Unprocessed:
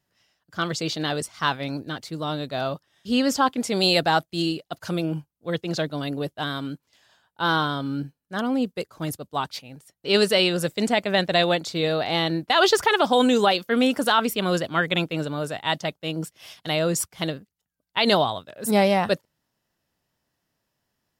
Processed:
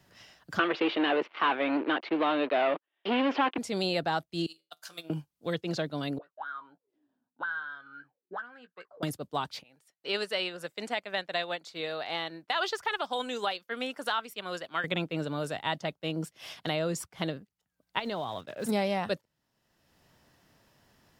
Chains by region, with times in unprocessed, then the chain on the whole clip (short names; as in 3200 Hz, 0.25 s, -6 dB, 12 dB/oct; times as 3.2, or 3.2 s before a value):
0.59–3.58 sample leveller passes 5 + elliptic band-pass 310–2800 Hz, stop band 50 dB
4.46–5.1 differentiator + resonator 81 Hz, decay 0.23 s, mix 80% + transient shaper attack +10 dB, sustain -9 dB
6.18–9.03 auto-wah 240–1600 Hz, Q 20, up, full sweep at -23.5 dBFS + doubler 17 ms -10.5 dB
9.63–14.84 HPF 1100 Hz 6 dB/oct + upward expander, over -39 dBFS
17.99–18.69 block floating point 5-bit + high shelf 7100 Hz -8.5 dB + compressor 4:1, threshold -28 dBFS
whole clip: high shelf 6400 Hz -7 dB; three-band squash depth 70%; gain -7.5 dB